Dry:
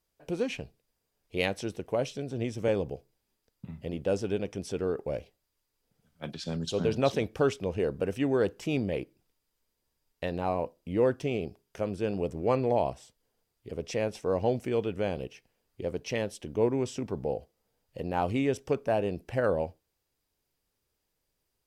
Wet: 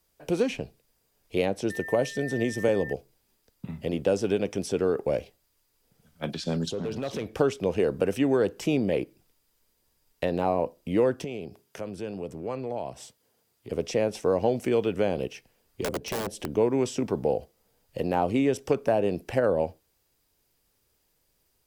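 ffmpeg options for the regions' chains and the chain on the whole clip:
-filter_complex "[0:a]asettb=1/sr,asplit=3[a][b][c];[a]atrim=end=1.704[d];[b]atrim=start=1.7:end=2.93,asetpts=PTS-STARTPTS,afade=t=in:d=0.004:c=qsin,afade=t=out:st=1.226:d=0.004:c=qsin,highshelf=f=7.2k:g=7.5,aeval=exprs='val(0)+0.00891*sin(2*PI*1800*n/s)':c=same[e];[c]atrim=start=2.926[f];[d][e]acrossfade=d=0.004:c1=hsin:c2=qsin[g];[g][f]acrossfade=d=0.004:c1=qsin:c2=hsin,asettb=1/sr,asplit=3[h][i][j];[h]atrim=end=6.714[k];[i]atrim=start=6.71:end=7.39,asetpts=PTS-STARTPTS,afade=t=in:d=0.004:c=qsin,afade=t=out:st=0.676:d=0.004:c=qsin,highshelf=f=6.3k:g=-5.5,acompressor=threshold=-34dB:ratio=5:attack=3.2:release=140:knee=1:detection=peak,asoftclip=type=hard:threshold=-33dB[l];[j]atrim=start=7.386[m];[k][l]acrossfade=d=0.004:c1=hsin:c2=qsin[n];[n][m]acrossfade=d=0.004:c1=qsin:c2=hsin,asettb=1/sr,asplit=3[o][p][q];[o]atrim=end=11.244[r];[p]atrim=start=11.24:end=13.71,asetpts=PTS-STARTPTS,afade=t=in:d=0.004:c=qsin,afade=t=out:st=2.466:d=0.004:c=qsin,highpass=100,acompressor=threshold=-47dB:ratio=2:attack=3.2:release=140:knee=1:detection=peak[s];[q]atrim=start=13.706[t];[r][s]acrossfade=d=0.004:c1=hsin:c2=qsin[u];[u][t]acrossfade=d=0.004:c1=qsin:c2=hsin,asettb=1/sr,asplit=3[v][w][x];[v]atrim=end=15.814[y];[w]atrim=start=15.81:end=16.55,asetpts=PTS-STARTPTS,afade=t=in:d=0.004:c=qsin,afade=t=out:st=0.736:d=0.004:c=qsin,acompressor=mode=upward:threshold=-34dB:ratio=2.5:attack=3.2:release=140:knee=2.83:detection=peak,aeval=exprs='(mod(22.4*val(0)+1,2)-1)/22.4':c=same[z];[x]atrim=start=16.546[aa];[y][z]acrossfade=d=0.004:c1=hsin:c2=qsin[ab];[ab][aa]acrossfade=d=0.004:c1=qsin:c2=hsin,highshelf=f=8k:g=4.5,acrossover=split=160|860[ac][ad][ae];[ac]acompressor=threshold=-50dB:ratio=4[af];[ad]acompressor=threshold=-28dB:ratio=4[ag];[ae]acompressor=threshold=-43dB:ratio=4[ah];[af][ag][ah]amix=inputs=3:normalize=0,volume=7.5dB"

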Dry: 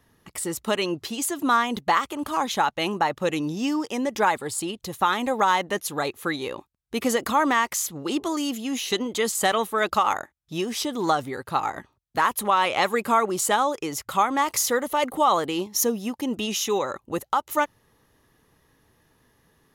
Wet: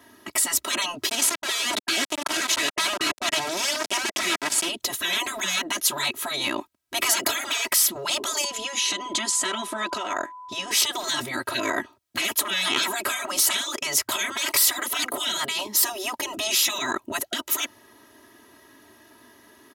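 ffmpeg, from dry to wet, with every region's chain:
-filter_complex "[0:a]asettb=1/sr,asplit=3[a][b][c];[a]atrim=end=1.094[d];[b]atrim=start=1.09:end=4.69,asetpts=PTS-STARTPTS,afade=t=in:d=0.004:c=qsin,afade=t=out:st=3.596:d=0.004:c=qsin,equalizer=f=320:w=2:g=-7,aeval=exprs='val(0)*gte(abs(val(0)),0.0355)':c=same,lowpass=10k[e];[c]atrim=start=4.686[f];[d][e]acrossfade=d=0.004:c1=hsin:c2=qsin[g];[g][f]acrossfade=d=0.004:c1=qsin:c2=hsin,asettb=1/sr,asplit=3[h][i][j];[h]atrim=end=8.444[k];[i]atrim=start=8.44:end=10.71,asetpts=PTS-STARTPTS,afade=t=in:d=0.004:c=qsin,afade=t=out:st=2.266:d=0.004:c=qsin,lowpass=f=9.4k:w=0.5412,lowpass=f=9.4k:w=1.3066,acompressor=threshold=-31dB:ratio=4:attack=3.2:release=140:knee=1:detection=peak,aeval=exprs='val(0)+0.00891*sin(2*PI*1000*n/s)':c=same[l];[j]atrim=start=10.706[m];[k][l]acrossfade=d=0.004:c1=hsin:c2=qsin[n];[n][m]acrossfade=d=0.004:c1=qsin:c2=hsin,highpass=180,afftfilt=real='re*lt(hypot(re,im),0.0794)':imag='im*lt(hypot(re,im),0.0794)':win_size=1024:overlap=0.75,aecho=1:1:3.1:0.95,volume=9dB"

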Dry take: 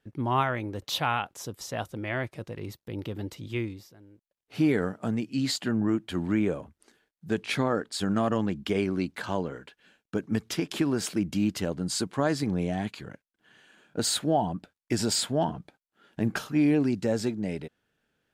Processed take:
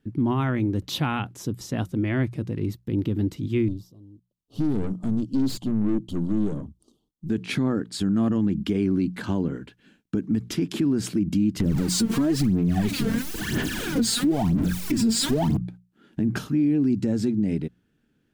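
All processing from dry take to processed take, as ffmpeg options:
-filter_complex "[0:a]asettb=1/sr,asplit=3[a][b][c];[a]atrim=end=3.684[d];[b]atrim=start=3.68:end=7.3,asetpts=PTS-STARTPTS,afade=t=in:d=0.004:c=qsin,afade=t=out:st=3.616:d=0.004:c=qsin,asuperstop=centerf=1900:order=12:qfactor=1.1,aphaser=in_gain=1:out_gain=1:delay=1.9:decay=0.4:speed=1.7:type=triangular,aeval=exprs='(tanh(35.5*val(0)+0.75)-tanh(0.75))/35.5':c=same[e];[c]atrim=start=7.296[f];[d][e]acrossfade=d=0.004:c1=hsin:c2=qsin[g];[g][f]acrossfade=d=0.004:c1=qsin:c2=hsin,asettb=1/sr,asplit=3[h][i][j];[h]atrim=end=11.604[k];[i]atrim=start=11.6:end=15.57,asetpts=PTS-STARTPTS,afade=t=in:d=0.004:c=qsin,afade=t=out:st=3.966:d=0.004:c=qsin,aeval=exprs='val(0)+0.5*0.0355*sgn(val(0))':c=same,aphaser=in_gain=1:out_gain=1:delay=4.5:decay=0.74:speed=1:type=sinusoidal[l];[j]atrim=start=15.566[m];[k][l]acrossfade=d=0.004:c1=hsin:c2=qsin[n];[n][m]acrossfade=d=0.004:c1=qsin:c2=hsin,lowshelf=f=410:t=q:w=1.5:g=10.5,bandreject=f=60:t=h:w=6,bandreject=f=120:t=h:w=6,bandreject=f=180:t=h:w=6,alimiter=limit=-15dB:level=0:latency=1:release=108"

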